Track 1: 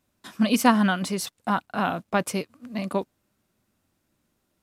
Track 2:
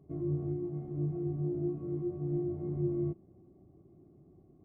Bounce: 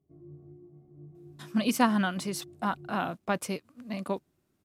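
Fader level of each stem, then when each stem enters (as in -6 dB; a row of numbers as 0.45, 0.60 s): -5.5, -16.0 dB; 1.15, 0.00 s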